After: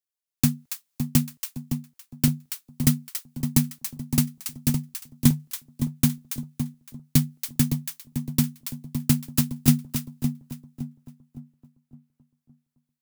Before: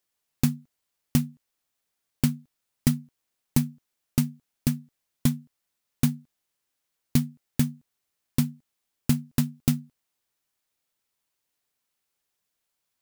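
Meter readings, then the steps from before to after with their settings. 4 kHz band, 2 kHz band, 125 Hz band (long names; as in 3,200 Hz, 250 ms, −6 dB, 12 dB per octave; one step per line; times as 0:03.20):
+5.5 dB, +3.0 dB, +3.5 dB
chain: high-shelf EQ 4,300 Hz +6 dB
on a send: echo with a time of its own for lows and highs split 970 Hz, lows 563 ms, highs 281 ms, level −5 dB
on the sum: multiband upward and downward expander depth 40%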